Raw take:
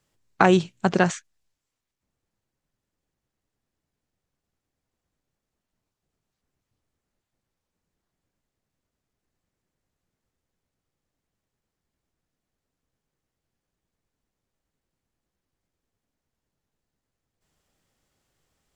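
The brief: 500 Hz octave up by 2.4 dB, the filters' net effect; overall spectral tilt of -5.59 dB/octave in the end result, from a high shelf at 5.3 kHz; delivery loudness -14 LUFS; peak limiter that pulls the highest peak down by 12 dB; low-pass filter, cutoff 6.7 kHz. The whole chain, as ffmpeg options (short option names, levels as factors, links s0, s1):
-af "lowpass=6700,equalizer=f=500:t=o:g=3.5,highshelf=f=5300:g=-3,volume=3.98,alimiter=limit=1:level=0:latency=1"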